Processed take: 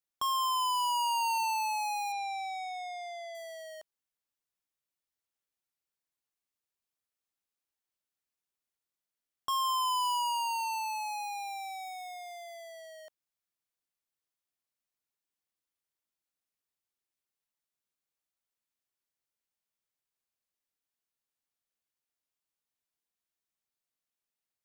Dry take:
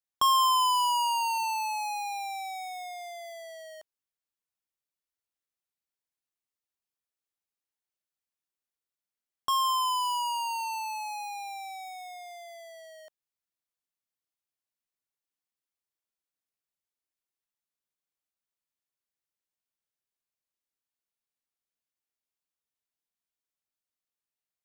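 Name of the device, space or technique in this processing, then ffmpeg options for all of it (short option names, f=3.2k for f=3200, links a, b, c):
soft clipper into limiter: -filter_complex "[0:a]asettb=1/sr,asplit=3[a][b][c];[a]atrim=end=2.124[d];[b]atrim=start=2.12:end=3.35,asetpts=PTS-STARTPTS,afade=t=in:d=0.004:c=qsin,afade=t=out:st=1.226:d=0.004:c=qsin,lowpass=5.6k[e];[c]atrim=start=3.346[f];[d][e]acrossfade=d=0.004:c1=hsin:c2=qsin[g];[g][f]acrossfade=d=0.004:c1=qsin:c2=hsin,asoftclip=type=tanh:threshold=-24dB,alimiter=level_in=5.5dB:limit=-24dB:level=0:latency=1,volume=-5.5dB"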